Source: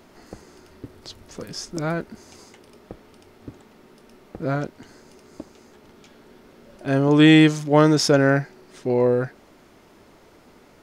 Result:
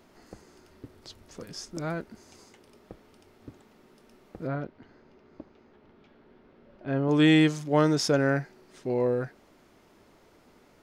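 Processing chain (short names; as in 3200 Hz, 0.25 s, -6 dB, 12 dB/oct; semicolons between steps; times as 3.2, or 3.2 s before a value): 4.47–7.09 air absorption 280 m; gain -7 dB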